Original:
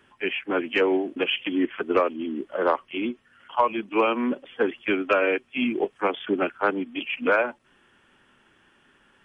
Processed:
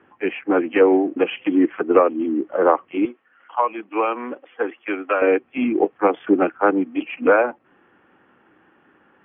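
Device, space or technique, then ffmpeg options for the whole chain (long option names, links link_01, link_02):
bass cabinet: -filter_complex "[0:a]highpass=76,equalizer=frequency=180:width_type=q:width=4:gain=4,equalizer=frequency=310:width_type=q:width=4:gain=10,equalizer=frequency=490:width_type=q:width=4:gain=7,equalizer=frequency=770:width_type=q:width=4:gain=8,equalizer=frequency=1200:width_type=q:width=4:gain=4,lowpass=frequency=2400:width=0.5412,lowpass=frequency=2400:width=1.3066,asettb=1/sr,asplit=3[link_01][link_02][link_03];[link_01]atrim=end=3.054[link_04];[link_02]atrim=start=3.05:end=5.22,asetpts=PTS-STARTPTS,afade=type=in:duration=0.004:curve=qsin,afade=type=out:start_time=2.166:duration=0.004:curve=qsin,highpass=frequency=1000:poles=1[link_05];[link_03]atrim=start=5.216[link_06];[link_04][link_05]acrossfade=duration=0.004:curve1=hsin:curve2=qsin[link_07];[link_07][link_06]acrossfade=duration=0.004:curve1=qsin:curve2=hsin,volume=1dB"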